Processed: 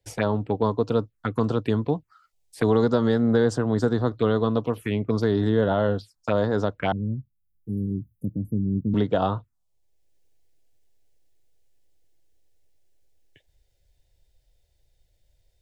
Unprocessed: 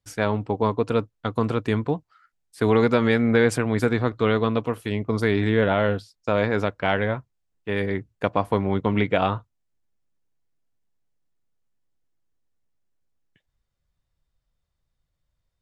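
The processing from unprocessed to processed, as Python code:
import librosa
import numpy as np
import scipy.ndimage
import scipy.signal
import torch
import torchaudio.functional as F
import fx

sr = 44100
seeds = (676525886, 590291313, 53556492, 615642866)

y = fx.env_phaser(x, sr, low_hz=200.0, high_hz=2300.0, full_db=-19.5)
y = fx.cheby2_bandstop(y, sr, low_hz=940.0, high_hz=4000.0, order=4, stop_db=70, at=(6.92, 8.94))
y = fx.band_squash(y, sr, depth_pct=40)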